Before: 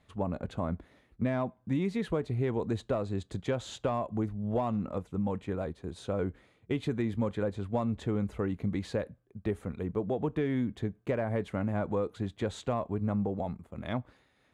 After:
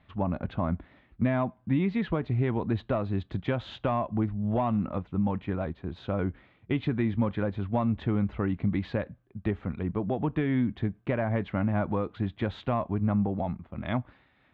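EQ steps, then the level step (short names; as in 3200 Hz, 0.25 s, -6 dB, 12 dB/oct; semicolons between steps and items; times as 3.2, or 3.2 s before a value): LPF 3400 Hz 24 dB/oct; bell 460 Hz -8 dB 0.54 oct; +5.0 dB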